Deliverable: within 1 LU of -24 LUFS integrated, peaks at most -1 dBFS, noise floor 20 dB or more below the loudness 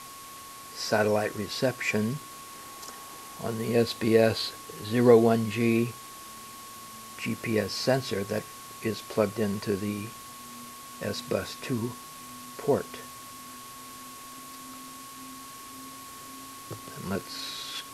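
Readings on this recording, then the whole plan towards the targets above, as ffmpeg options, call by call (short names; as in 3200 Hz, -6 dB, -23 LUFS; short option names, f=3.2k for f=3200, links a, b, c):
steady tone 1100 Hz; tone level -45 dBFS; noise floor -44 dBFS; noise floor target -48 dBFS; loudness -28.0 LUFS; peak -5.5 dBFS; loudness target -24.0 LUFS
-> -af "bandreject=f=1.1k:w=30"
-af "afftdn=nr=6:nf=-44"
-af "volume=4dB"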